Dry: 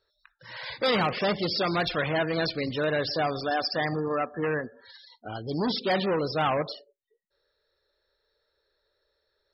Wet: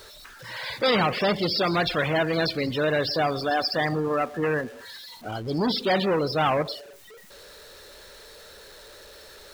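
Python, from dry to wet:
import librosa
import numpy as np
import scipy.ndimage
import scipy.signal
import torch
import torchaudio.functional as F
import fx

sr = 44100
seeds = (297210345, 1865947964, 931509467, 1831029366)

y = x + 0.5 * 10.0 ** (-43.5 / 20.0) * np.sign(x)
y = y * 10.0 ** (2.5 / 20.0)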